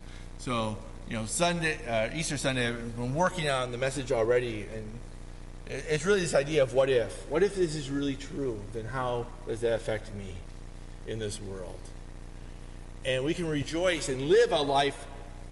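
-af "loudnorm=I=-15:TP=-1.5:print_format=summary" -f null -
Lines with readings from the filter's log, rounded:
Input Integrated:    -29.0 LUFS
Input True Peak:     -13.3 dBTP
Input LRA:             5.8 LU
Input Threshold:     -40.2 LUFS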